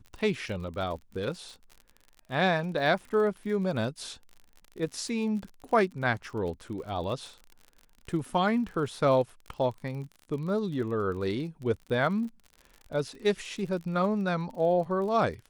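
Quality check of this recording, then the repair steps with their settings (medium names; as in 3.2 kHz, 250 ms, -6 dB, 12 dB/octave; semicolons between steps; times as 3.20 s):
crackle 46 per s -38 dBFS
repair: de-click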